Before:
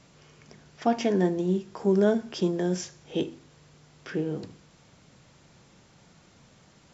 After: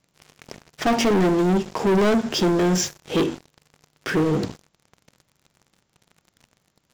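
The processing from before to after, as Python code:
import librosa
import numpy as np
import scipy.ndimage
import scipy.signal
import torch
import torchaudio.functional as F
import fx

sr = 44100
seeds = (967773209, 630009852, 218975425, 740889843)

y = fx.leveller(x, sr, passes=5)
y = y * 10.0 ** (-4.0 / 20.0)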